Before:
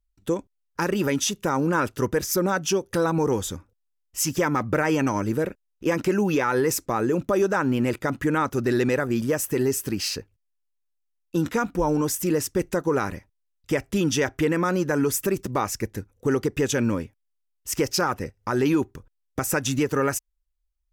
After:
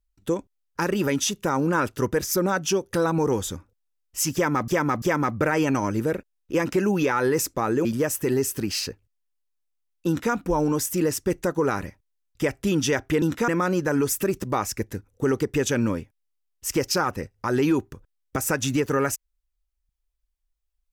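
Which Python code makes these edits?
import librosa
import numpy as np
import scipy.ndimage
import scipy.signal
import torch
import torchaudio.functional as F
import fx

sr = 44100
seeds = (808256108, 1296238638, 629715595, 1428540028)

y = fx.edit(x, sr, fx.repeat(start_s=4.34, length_s=0.34, count=3),
    fx.cut(start_s=7.17, length_s=1.97),
    fx.duplicate(start_s=11.36, length_s=0.26, to_s=14.51), tone=tone)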